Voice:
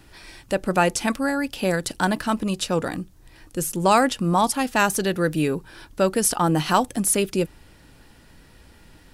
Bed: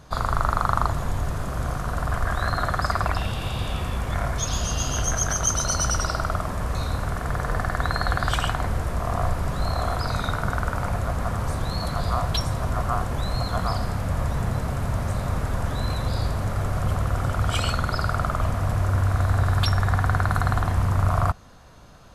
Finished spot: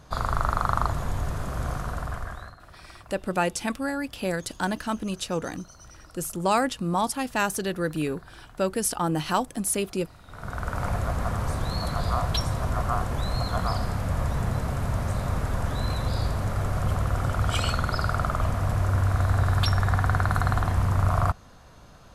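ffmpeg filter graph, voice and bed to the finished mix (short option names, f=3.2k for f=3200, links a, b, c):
-filter_complex "[0:a]adelay=2600,volume=-5.5dB[a];[1:a]volume=22dB,afade=t=out:st=1.76:d=0.8:silence=0.0668344,afade=t=in:st=10.27:d=0.6:silence=0.0595662[b];[a][b]amix=inputs=2:normalize=0"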